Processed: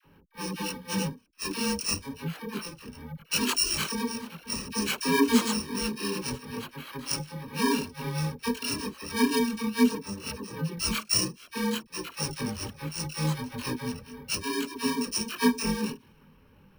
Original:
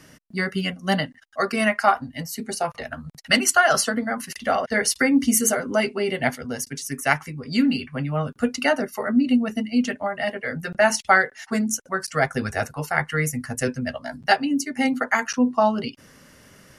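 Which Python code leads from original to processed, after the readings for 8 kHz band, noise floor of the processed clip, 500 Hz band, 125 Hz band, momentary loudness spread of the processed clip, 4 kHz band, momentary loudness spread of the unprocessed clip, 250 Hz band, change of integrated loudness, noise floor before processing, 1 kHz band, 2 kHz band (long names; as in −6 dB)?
−5.5 dB, −59 dBFS, −9.5 dB, −3.5 dB, 12 LU, −1.0 dB, 11 LU, −5.5 dB, −6.5 dB, −53 dBFS, −11.5 dB, −12.0 dB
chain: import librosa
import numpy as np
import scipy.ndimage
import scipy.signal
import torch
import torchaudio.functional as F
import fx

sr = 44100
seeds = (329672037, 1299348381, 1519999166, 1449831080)

y = fx.bit_reversed(x, sr, seeds[0], block=64)
y = fx.dispersion(y, sr, late='lows', ms=51.0, hz=760.0)
y = fx.env_lowpass(y, sr, base_hz=1900.0, full_db=-16.0)
y = fx.chorus_voices(y, sr, voices=6, hz=0.81, base_ms=22, depth_ms=3.3, mix_pct=55)
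y = np.repeat(scipy.signal.resample_poly(y, 1, 3), 3)[:len(y)]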